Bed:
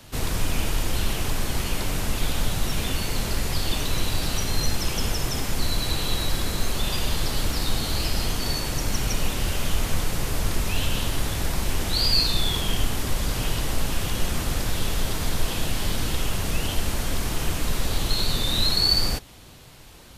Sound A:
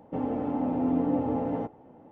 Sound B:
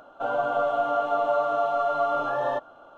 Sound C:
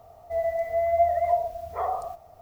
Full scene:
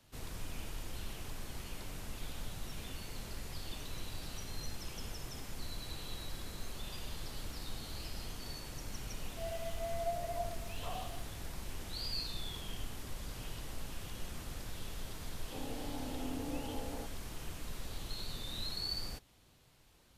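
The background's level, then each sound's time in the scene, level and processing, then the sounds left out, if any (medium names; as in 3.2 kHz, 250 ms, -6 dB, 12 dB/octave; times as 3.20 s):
bed -18.5 dB
9.07 s: add C -16.5 dB
15.40 s: add A -13.5 dB + peaking EQ 190 Hz -7 dB
not used: B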